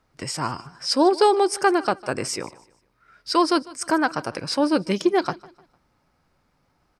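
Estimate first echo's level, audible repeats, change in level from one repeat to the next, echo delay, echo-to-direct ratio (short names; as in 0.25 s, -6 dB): -21.0 dB, 2, -9.0 dB, 0.151 s, -20.5 dB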